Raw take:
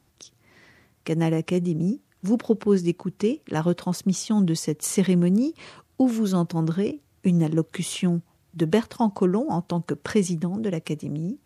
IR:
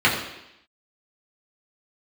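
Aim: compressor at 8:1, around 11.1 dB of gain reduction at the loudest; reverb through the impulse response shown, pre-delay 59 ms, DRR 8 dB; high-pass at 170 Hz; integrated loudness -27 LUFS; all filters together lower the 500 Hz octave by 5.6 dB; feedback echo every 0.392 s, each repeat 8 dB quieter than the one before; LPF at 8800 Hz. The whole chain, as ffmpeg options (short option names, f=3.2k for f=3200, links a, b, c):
-filter_complex "[0:a]highpass=170,lowpass=8.8k,equalizer=f=500:t=o:g=-7.5,acompressor=threshold=-31dB:ratio=8,aecho=1:1:392|784|1176|1568|1960:0.398|0.159|0.0637|0.0255|0.0102,asplit=2[a][b];[1:a]atrim=start_sample=2205,adelay=59[c];[b][c]afir=irnorm=-1:irlink=0,volume=-28.5dB[d];[a][d]amix=inputs=2:normalize=0,volume=8dB"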